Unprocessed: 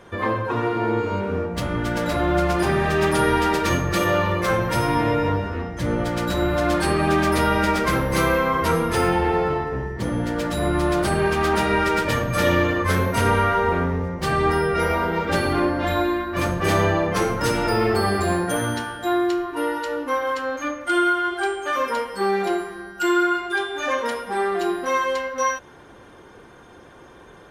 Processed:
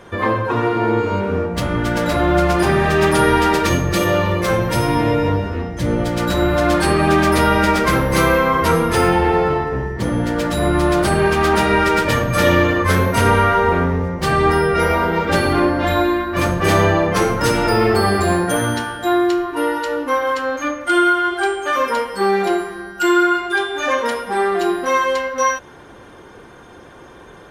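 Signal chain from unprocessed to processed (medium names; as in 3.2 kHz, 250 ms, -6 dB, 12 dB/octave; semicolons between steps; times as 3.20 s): 3.67–6.20 s: peaking EQ 1.3 kHz -4.5 dB 1.5 oct; trim +5 dB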